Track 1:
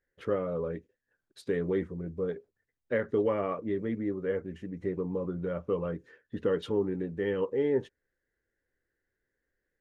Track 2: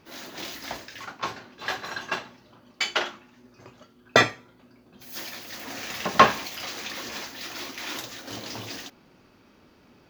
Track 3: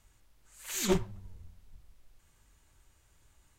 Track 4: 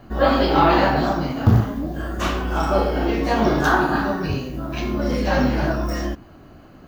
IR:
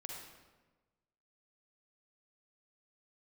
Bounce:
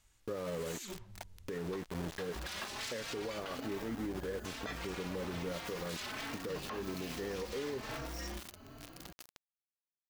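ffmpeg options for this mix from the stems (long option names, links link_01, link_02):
-filter_complex "[0:a]volume=1.5dB[link_01];[1:a]adelay=500,volume=-7dB[link_02];[2:a]highshelf=frequency=8100:gain=-8.5,alimiter=level_in=2.5dB:limit=-24dB:level=0:latency=1:release=160,volume=-2.5dB,volume=-6.5dB[link_03];[3:a]aeval=exprs='0.0891*(abs(mod(val(0)/0.0891+3,4)-2)-1)':channel_layout=same,asplit=2[link_04][link_05];[link_05]adelay=3.9,afreqshift=1.2[link_06];[link_04][link_06]amix=inputs=2:normalize=1,adelay=2250,volume=-5.5dB[link_07];[link_03][link_07]amix=inputs=2:normalize=0,highshelf=frequency=2300:gain=10,acompressor=threshold=-45dB:ratio=2,volume=0dB[link_08];[link_01][link_02]amix=inputs=2:normalize=0,aeval=exprs='val(0)*gte(abs(val(0)),0.0188)':channel_layout=same,acompressor=threshold=-30dB:ratio=4,volume=0dB[link_09];[link_08][link_09]amix=inputs=2:normalize=0,alimiter=level_in=6.5dB:limit=-24dB:level=0:latency=1:release=158,volume=-6.5dB"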